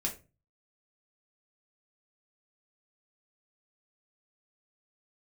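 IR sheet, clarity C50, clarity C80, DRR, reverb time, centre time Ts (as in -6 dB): 12.0 dB, 18.0 dB, 0.0 dB, 0.30 s, 14 ms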